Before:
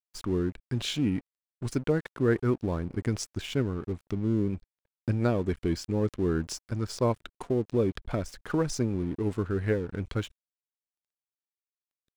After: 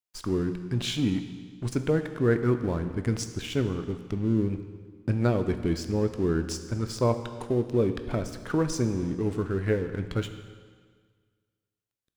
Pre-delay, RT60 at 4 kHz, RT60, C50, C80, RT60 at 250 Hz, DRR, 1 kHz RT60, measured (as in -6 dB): 17 ms, 1.6 s, 1.7 s, 10.0 dB, 11.0 dB, 1.7 s, 8.0 dB, 1.7 s